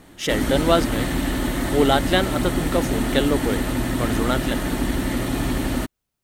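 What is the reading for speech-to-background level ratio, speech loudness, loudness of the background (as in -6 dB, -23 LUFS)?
0.5 dB, -23.5 LUFS, -24.0 LUFS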